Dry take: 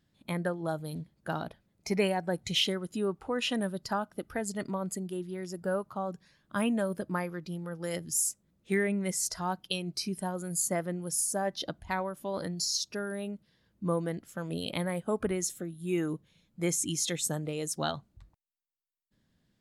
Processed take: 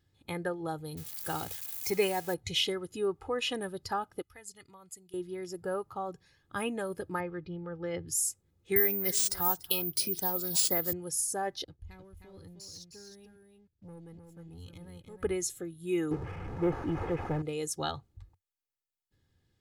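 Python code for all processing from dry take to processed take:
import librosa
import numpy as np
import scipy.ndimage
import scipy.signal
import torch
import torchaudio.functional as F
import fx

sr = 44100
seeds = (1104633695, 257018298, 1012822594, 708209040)

y = fx.chain(x, sr, fx.crossing_spikes(level_db=-31.0),
    fx.high_shelf(hz=11000.0, db=7.5), at=(0.97, 2.34))
y = fx.chain(y, sr, fx.tone_stack(knobs='5-5-5'),
    fx.notch(hz=1600.0, q=13.0), at=(4.22, 5.14))
y = fx.chain(y, sr, fx.gaussian_blur(sigma=2.4),
    fx.low_shelf(hz=160.0, db=6.5), at=(7.2, 8.08))
y = fx.chain(y, sr, fx.echo_single(ms=290, db=-20.5),
    fx.resample_bad(factor=3, down='none', up='zero_stuff'),
    fx.band_squash(depth_pct=40), at=(8.76, 10.93))
y = fx.chain(y, sr, fx.tone_stack(knobs='10-0-1'),
    fx.leveller(passes=2),
    fx.echo_single(ms=310, db=-6.0), at=(11.64, 15.23))
y = fx.chain(y, sr, fx.delta_mod(bps=16000, step_db=-39.0),
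    fx.lowpass(hz=1300.0, slope=12),
    fx.leveller(passes=2), at=(16.11, 17.42))
y = fx.peak_eq(y, sr, hz=92.0, db=10.0, octaves=0.53)
y = y + 0.59 * np.pad(y, (int(2.4 * sr / 1000.0), 0))[:len(y)]
y = y * 10.0 ** (-2.5 / 20.0)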